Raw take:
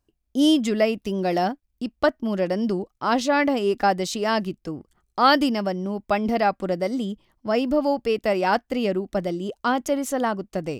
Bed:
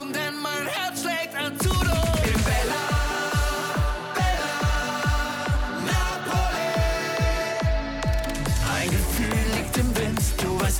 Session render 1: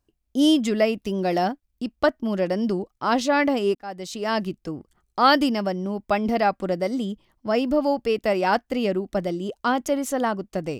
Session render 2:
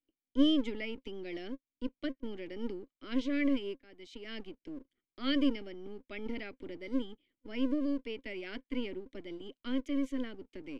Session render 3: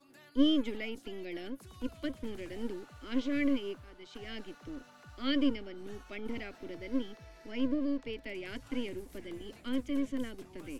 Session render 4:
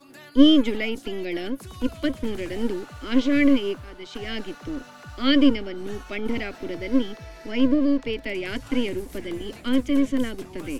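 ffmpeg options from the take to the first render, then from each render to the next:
-filter_complex "[0:a]asplit=2[s0][s1];[s0]atrim=end=3.75,asetpts=PTS-STARTPTS,afade=t=out:st=3.746:d=0.004:c=hsin[s2];[s1]atrim=start=3.75,asetpts=PTS-STARTPTS,afade=t=in:d=0.7[s3];[s2][s3]concat=n=2:v=0:a=1"
-filter_complex "[0:a]asplit=3[s0][s1][s2];[s0]bandpass=f=270:t=q:w=8,volume=1[s3];[s1]bandpass=f=2290:t=q:w=8,volume=0.501[s4];[s2]bandpass=f=3010:t=q:w=8,volume=0.355[s5];[s3][s4][s5]amix=inputs=3:normalize=0,acrossover=split=240[s6][s7];[s6]aeval=exprs='abs(val(0))':c=same[s8];[s8][s7]amix=inputs=2:normalize=0"
-filter_complex "[1:a]volume=0.0299[s0];[0:a][s0]amix=inputs=2:normalize=0"
-af "volume=3.98"

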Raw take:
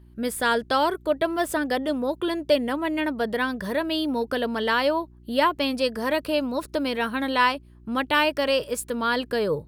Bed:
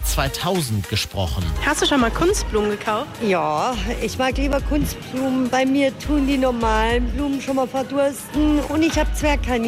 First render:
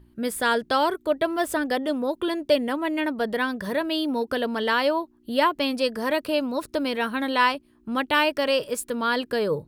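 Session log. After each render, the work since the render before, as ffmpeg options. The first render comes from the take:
-af "bandreject=f=60:t=h:w=4,bandreject=f=120:t=h:w=4,bandreject=f=180:t=h:w=4"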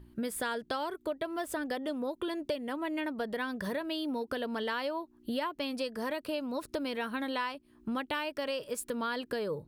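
-af "acompressor=threshold=0.0251:ratio=6"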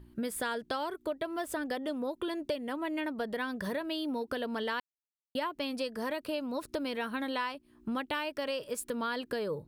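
-filter_complex "[0:a]asplit=3[s0][s1][s2];[s0]atrim=end=4.8,asetpts=PTS-STARTPTS,afade=t=out:st=4.796:d=0.004:c=hsin[s3];[s1]atrim=start=4.8:end=5.35,asetpts=PTS-STARTPTS,volume=0[s4];[s2]atrim=start=5.35,asetpts=PTS-STARTPTS,afade=t=in:d=0.004:c=hsin[s5];[s3][s4][s5]concat=n=3:v=0:a=1"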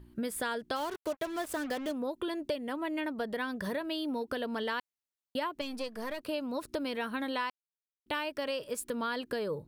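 -filter_complex "[0:a]asplit=3[s0][s1][s2];[s0]afade=t=out:st=0.75:d=0.02[s3];[s1]acrusher=bits=6:mix=0:aa=0.5,afade=t=in:st=0.75:d=0.02,afade=t=out:st=1.91:d=0.02[s4];[s2]afade=t=in:st=1.91:d=0.02[s5];[s3][s4][s5]amix=inputs=3:normalize=0,asettb=1/sr,asplit=3[s6][s7][s8];[s6]atrim=end=5.614[s9];[s7]atrim=start=5.61:end=6.23,asetpts=PTS-STARTPTS,afade=t=in:d=0.004:c=qsin,afade=t=out:st=0.616:d=0.004:c=qsin,aeval=exprs='if(lt(val(0),0),0.447*val(0),val(0))':c=same[s10];[s8]atrim=start=6.226[s11];[s9][s10]acrossfade=d=0.004:c1=hsin:c2=qsin[s12];[s12][s11]acrossfade=d=0.004:c1=qsin:c2=hsin,asplit=3[s13][s14][s15];[s13]atrim=end=7.5,asetpts=PTS-STARTPTS,afade=t=out:st=7.496:d=0.004:c=hsin[s16];[s14]atrim=start=7.5:end=8.06,asetpts=PTS-STARTPTS,volume=0[s17];[s15]atrim=start=8.06,asetpts=PTS-STARTPTS,afade=t=in:d=0.004:c=hsin[s18];[s16][s17][s18]concat=n=3:v=0:a=1"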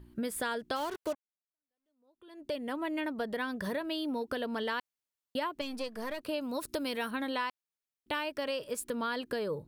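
-filter_complex "[0:a]asettb=1/sr,asplit=3[s0][s1][s2];[s0]atrim=end=6.414[s3];[s1]atrim=start=6.41:end=7.11,asetpts=PTS-STARTPTS,afade=t=in:d=0.004:c=qsin,afade=t=out:st=0.696:d=0.004:c=qsin,aemphasis=mode=production:type=cd[s4];[s2]atrim=start=7.106[s5];[s3][s4]acrossfade=d=0.004:c1=hsin:c2=qsin[s6];[s6][s5]acrossfade=d=0.004:c1=qsin:c2=hsin,asplit=2[s7][s8];[s7]atrim=end=1.15,asetpts=PTS-STARTPTS,afade=t=out:st=1.146:d=0.004:c=hsin[s9];[s8]atrim=start=1.15,asetpts=PTS-STARTPTS,afade=t=in:d=1.4:c=exp[s10];[s9][s10]concat=n=2:v=0:a=1"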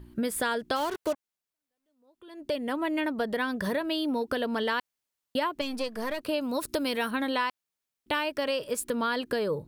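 -af "volume=1.88"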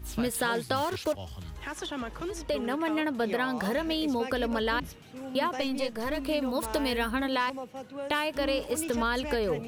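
-filter_complex "[1:a]volume=0.119[s0];[0:a][s0]amix=inputs=2:normalize=0"

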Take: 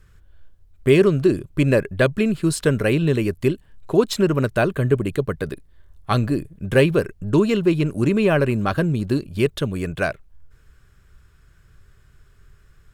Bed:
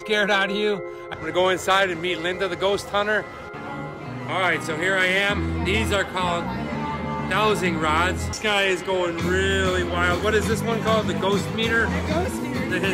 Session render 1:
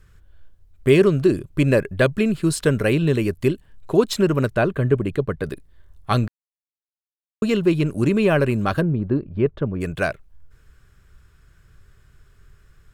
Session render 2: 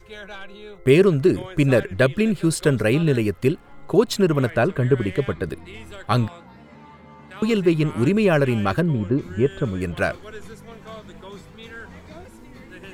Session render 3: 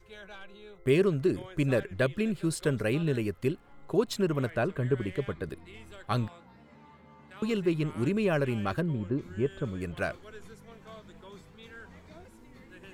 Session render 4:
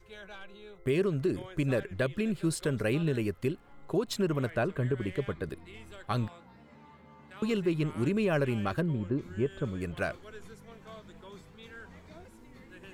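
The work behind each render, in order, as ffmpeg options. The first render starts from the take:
-filter_complex "[0:a]asettb=1/sr,asplit=3[s0][s1][s2];[s0]atrim=end=4.544[s3];[s1]atrim=start=4.54:end=5.44,asetpts=PTS-STARTPTS,afade=t=in:d=0.004:c=qsin,afade=t=out:st=0.896:d=0.004:c=qsin,highshelf=f=4900:g=-11.5[s4];[s2]atrim=start=5.436[s5];[s3][s4]acrossfade=d=0.004:c1=hsin:c2=qsin[s6];[s6][s5]acrossfade=d=0.004:c1=qsin:c2=hsin,asplit=3[s7][s8][s9];[s7]afade=t=out:st=8.8:d=0.02[s10];[s8]lowpass=1300,afade=t=in:st=8.8:d=0.02,afade=t=out:st=9.8:d=0.02[s11];[s9]afade=t=in:st=9.8:d=0.02[s12];[s10][s11][s12]amix=inputs=3:normalize=0,asplit=3[s13][s14][s15];[s13]atrim=end=6.28,asetpts=PTS-STARTPTS,afade=t=out:st=6.276:d=0.004:c=hsin[s16];[s14]atrim=start=6.28:end=7.42,asetpts=PTS-STARTPTS,volume=0[s17];[s15]atrim=start=7.42,asetpts=PTS-STARTPTS,afade=t=in:d=0.004:c=hsin[s18];[s16][s17][s18]concat=n=3:v=0:a=1"
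-filter_complex "[1:a]volume=0.126[s0];[0:a][s0]amix=inputs=2:normalize=0"
-af "volume=0.335"
-af "alimiter=limit=0.112:level=0:latency=1:release=113"

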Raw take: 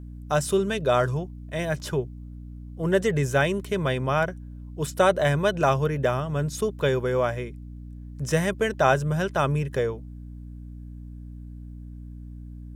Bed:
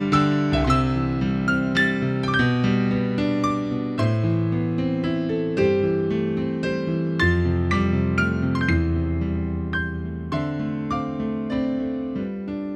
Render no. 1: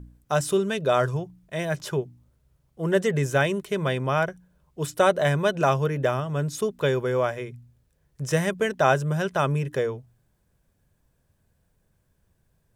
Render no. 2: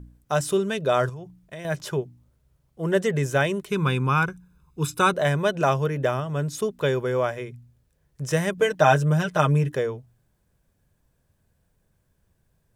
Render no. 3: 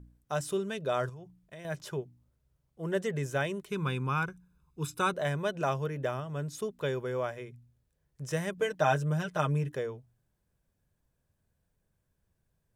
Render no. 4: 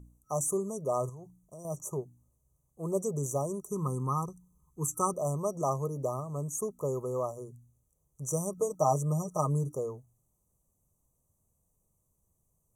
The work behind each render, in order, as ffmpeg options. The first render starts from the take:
-af "bandreject=f=60:t=h:w=4,bandreject=f=120:t=h:w=4,bandreject=f=180:t=h:w=4,bandreject=f=240:t=h:w=4,bandreject=f=300:t=h:w=4"
-filter_complex "[0:a]asettb=1/sr,asplit=3[s0][s1][s2];[s0]atrim=end=1.094[s3];[s1]atrim=start=1.09:end=1.65,asetpts=PTS-STARTPTS,afade=t=in:d=0.004:c=qsin,afade=t=out:st=0.556:d=0.004:c=qsin,acompressor=threshold=0.0224:ratio=12:attack=3.2:release=140:knee=1:detection=peak[s4];[s2]atrim=start=1.646[s5];[s3][s4]acrossfade=d=0.004:c1=hsin:c2=qsin[s6];[s6][s5]acrossfade=d=0.004:c1=qsin:c2=hsin,asettb=1/sr,asplit=3[s7][s8][s9];[s7]atrim=end=3.704[s10];[s8]atrim=start=3.7:end=5.14,asetpts=PTS-STARTPTS,afade=t=in:d=0.004:c=qsin,afade=t=out:st=1.436:d=0.004:c=qsin,aecho=1:1:0.8:0.88,atrim=end_sample=63504[s11];[s9]atrim=start=5.136[s12];[s10][s11]acrossfade=d=0.004:c1=hsin:c2=qsin[s13];[s13][s12]acrossfade=d=0.004:c1=qsin:c2=hsin,asettb=1/sr,asplit=3[s14][s15][s16];[s14]atrim=end=8.574[s17];[s15]atrim=start=8.57:end=9.72,asetpts=PTS-STARTPTS,afade=t=in:d=0.004:c=qsin,afade=t=out:st=1.146:d=0.004:c=qsin,aecho=1:1:6.5:0.81,atrim=end_sample=50715[s18];[s16]atrim=start=9.716[s19];[s17][s18]acrossfade=d=0.004:c1=hsin:c2=qsin[s20];[s20][s19]acrossfade=d=0.004:c1=qsin:c2=hsin"
-af "volume=0.355"
-af "equalizer=f=9500:w=0.34:g=11,afftfilt=real='re*(1-between(b*sr/4096,1300,5800))':imag='im*(1-between(b*sr/4096,1300,5800))':win_size=4096:overlap=0.75"

